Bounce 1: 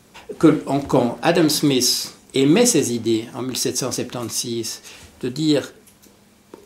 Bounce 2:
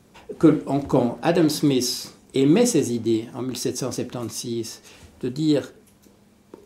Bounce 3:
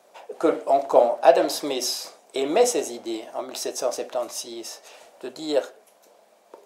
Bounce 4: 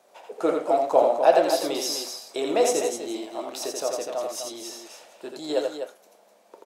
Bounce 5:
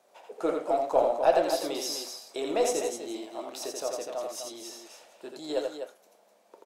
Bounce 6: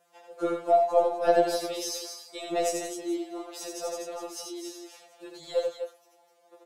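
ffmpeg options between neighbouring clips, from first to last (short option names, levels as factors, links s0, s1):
-af "tiltshelf=f=850:g=3.5,volume=0.596"
-af "highpass=f=630:t=q:w=4.4,volume=0.891"
-af "aecho=1:1:84.55|250.7:0.631|0.398,volume=0.708"
-af "aeval=exprs='0.596*(cos(1*acos(clip(val(0)/0.596,-1,1)))-cos(1*PI/2))+0.0133*(cos(4*acos(clip(val(0)/0.596,-1,1)))-cos(4*PI/2))':c=same,volume=0.562"
-af "afftfilt=real='re*2.83*eq(mod(b,8),0)':imag='im*2.83*eq(mod(b,8),0)':win_size=2048:overlap=0.75,volume=1.19"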